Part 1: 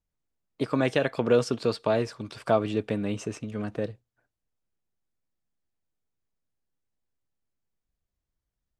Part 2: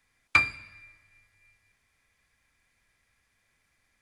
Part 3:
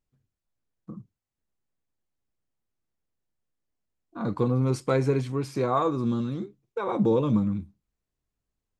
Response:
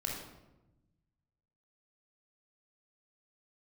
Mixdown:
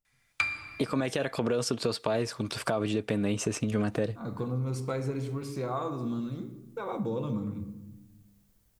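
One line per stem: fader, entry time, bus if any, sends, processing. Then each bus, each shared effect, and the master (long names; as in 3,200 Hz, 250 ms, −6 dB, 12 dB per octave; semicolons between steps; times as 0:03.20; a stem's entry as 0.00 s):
0.0 dB, 0.20 s, bus A, no send, automatic gain control gain up to 14.5 dB
−3.5 dB, 0.05 s, no bus, send −8 dB, tilt shelving filter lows −3.5 dB
−8.5 dB, 0.00 s, bus A, send −7.5 dB, no processing
bus A: 0.0 dB, high-shelf EQ 8,200 Hz +11.5 dB; brickwall limiter −10 dBFS, peak gain reduction 9.5 dB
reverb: on, RT60 1.0 s, pre-delay 22 ms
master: downward compressor 2.5 to 1, threshold −29 dBFS, peak gain reduction 10 dB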